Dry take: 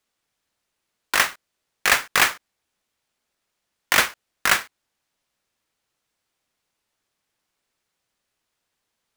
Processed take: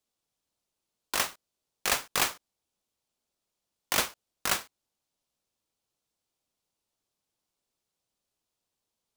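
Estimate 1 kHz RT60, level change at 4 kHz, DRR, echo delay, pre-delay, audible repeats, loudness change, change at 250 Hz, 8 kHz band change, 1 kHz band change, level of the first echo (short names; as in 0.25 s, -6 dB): none, -7.5 dB, none, none, none, none, -9.0 dB, -5.0 dB, -5.5 dB, -9.5 dB, none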